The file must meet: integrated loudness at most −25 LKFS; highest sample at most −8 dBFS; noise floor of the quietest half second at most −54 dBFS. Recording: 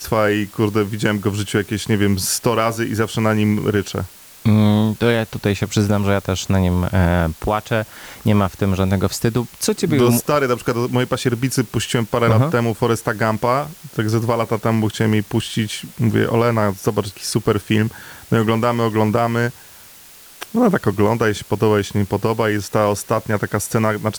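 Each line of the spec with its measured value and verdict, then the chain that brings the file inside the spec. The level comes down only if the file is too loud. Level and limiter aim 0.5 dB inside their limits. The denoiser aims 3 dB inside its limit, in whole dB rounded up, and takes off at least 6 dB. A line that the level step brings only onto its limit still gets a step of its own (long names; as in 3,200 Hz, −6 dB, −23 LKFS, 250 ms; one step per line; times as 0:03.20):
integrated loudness −18.5 LKFS: out of spec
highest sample −4.5 dBFS: out of spec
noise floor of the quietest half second −43 dBFS: out of spec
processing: broadband denoise 7 dB, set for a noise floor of −43 dBFS
level −7 dB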